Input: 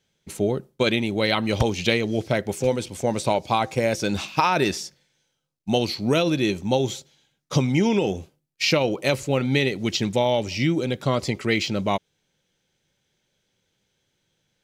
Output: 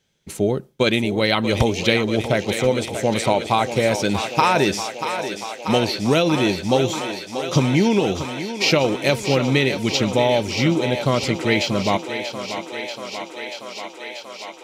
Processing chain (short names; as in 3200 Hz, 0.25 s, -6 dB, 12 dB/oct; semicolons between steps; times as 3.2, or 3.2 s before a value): thinning echo 0.636 s, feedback 83%, high-pass 260 Hz, level -9 dB; gain +3 dB